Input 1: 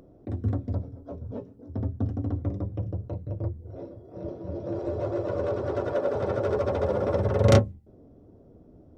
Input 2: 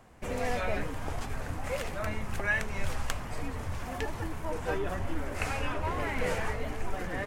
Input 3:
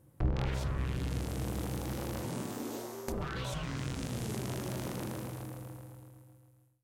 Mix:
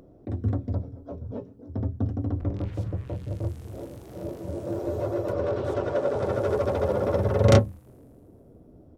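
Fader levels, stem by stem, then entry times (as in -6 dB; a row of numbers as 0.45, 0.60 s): +1.0 dB, off, -11.0 dB; 0.00 s, off, 2.20 s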